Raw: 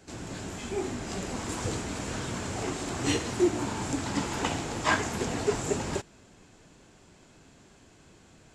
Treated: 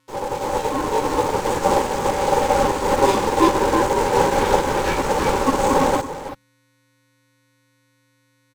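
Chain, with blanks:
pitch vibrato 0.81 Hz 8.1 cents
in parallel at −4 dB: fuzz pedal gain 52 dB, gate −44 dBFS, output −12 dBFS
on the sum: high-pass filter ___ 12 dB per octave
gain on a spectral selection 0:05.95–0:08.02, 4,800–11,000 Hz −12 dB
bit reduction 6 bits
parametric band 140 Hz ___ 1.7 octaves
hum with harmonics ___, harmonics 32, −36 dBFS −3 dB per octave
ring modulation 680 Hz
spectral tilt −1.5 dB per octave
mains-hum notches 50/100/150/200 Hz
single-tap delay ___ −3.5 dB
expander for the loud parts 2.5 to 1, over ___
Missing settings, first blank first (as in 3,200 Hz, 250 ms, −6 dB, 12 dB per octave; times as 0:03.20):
64 Hz, +9 dB, 400 Hz, 333 ms, −28 dBFS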